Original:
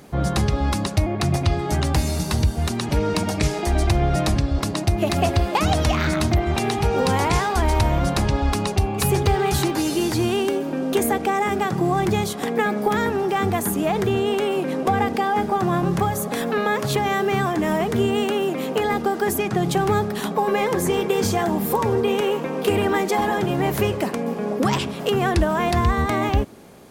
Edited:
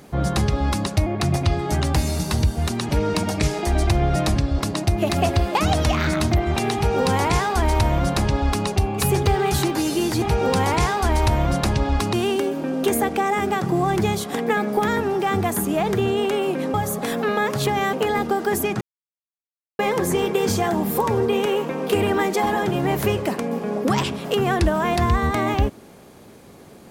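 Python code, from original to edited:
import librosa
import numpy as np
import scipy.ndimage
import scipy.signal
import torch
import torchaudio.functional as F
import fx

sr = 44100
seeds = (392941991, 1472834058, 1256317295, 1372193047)

y = fx.edit(x, sr, fx.duplicate(start_s=6.75, length_s=1.91, to_s=10.22),
    fx.cut(start_s=14.83, length_s=1.2),
    fx.cut(start_s=17.22, length_s=1.46),
    fx.silence(start_s=19.56, length_s=0.98), tone=tone)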